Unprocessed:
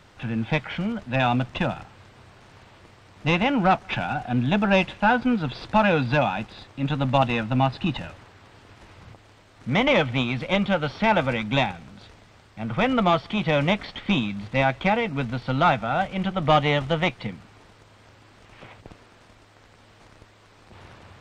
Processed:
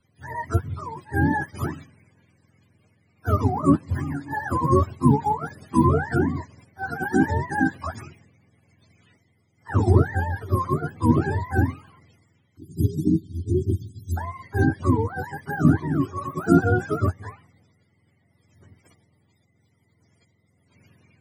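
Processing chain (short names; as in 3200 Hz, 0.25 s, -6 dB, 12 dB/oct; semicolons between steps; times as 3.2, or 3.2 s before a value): spectrum mirrored in octaves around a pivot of 460 Hz; spectral delete 12.57–14.17, 410–3100 Hz; three-band expander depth 40%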